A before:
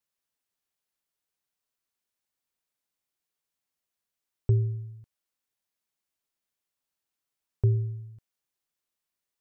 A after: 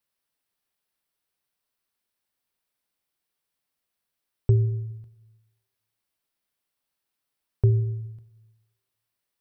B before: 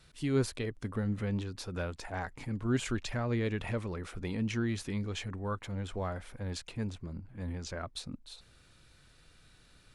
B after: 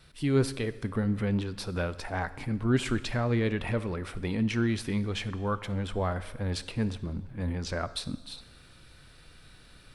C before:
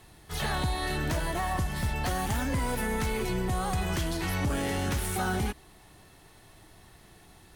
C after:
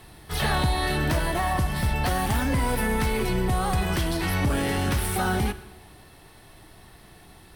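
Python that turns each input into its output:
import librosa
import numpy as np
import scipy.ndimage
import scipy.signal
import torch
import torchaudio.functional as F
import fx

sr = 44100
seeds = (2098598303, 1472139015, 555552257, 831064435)

p1 = fx.rider(x, sr, range_db=4, speed_s=2.0)
p2 = x + (p1 * 10.0 ** (-2.0 / 20.0))
p3 = fx.peak_eq(p2, sr, hz=6800.0, db=-8.0, octaves=0.32)
y = fx.rev_plate(p3, sr, seeds[0], rt60_s=1.2, hf_ratio=0.95, predelay_ms=0, drr_db=13.5)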